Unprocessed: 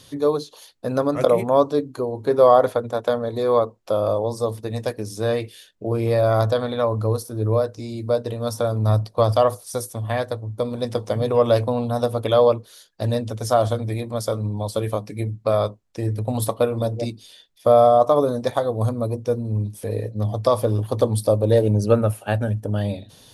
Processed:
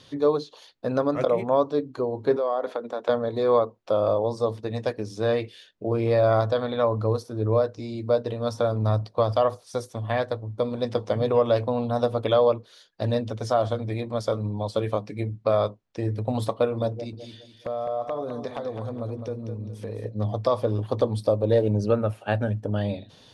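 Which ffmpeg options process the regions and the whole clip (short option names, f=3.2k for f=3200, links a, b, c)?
-filter_complex "[0:a]asettb=1/sr,asplit=3[a][b][c];[a]atrim=end=2.364[d];[b]atrim=start=2.36:end=3.09,asetpts=PTS-STARTPTS,afade=t=in:d=0.004:c=qsin,afade=t=out:st=0.726:d=0.004:c=qsin,highpass=f=210:w=0.5412,highpass=f=210:w=1.3066,acompressor=threshold=-26dB:ratio=2.5:attack=3.2:release=140:knee=1:detection=peak[e];[c]atrim=start=3.086[f];[d][e]acrossfade=d=0.004:c1=hsin:c2=qsin[g];[g][f]acrossfade=d=0.004:c1=qsin:c2=hsin,asettb=1/sr,asplit=3[h][i][j];[h]atrim=end=16.924[k];[i]atrim=start=16.92:end=20.05,asetpts=PTS-STARTPTS,afade=t=in:d=0.004:c=qsin,afade=t=out:st=3.126:d=0.004:c=qsin,acompressor=threshold=-28dB:ratio=4:attack=3.2:release=140:knee=1:detection=peak,aeval=exprs='0.106*(abs(mod(val(0)/0.106+3,4)-2)-1)':c=same,aecho=1:1:208|416|624|832:0.398|0.135|0.046|0.0156,atrim=end_sample=138033[l];[j]atrim=start=20.046[m];[k][l]acrossfade=d=0.004:c1=hsin:c2=qsin[n];[n][m]acrossfade=d=0.004:c1=qsin:c2=hsin,lowshelf=f=79:g=-8.5,alimiter=limit=-9.5dB:level=0:latency=1:release=456,lowpass=4.6k,volume=-1dB"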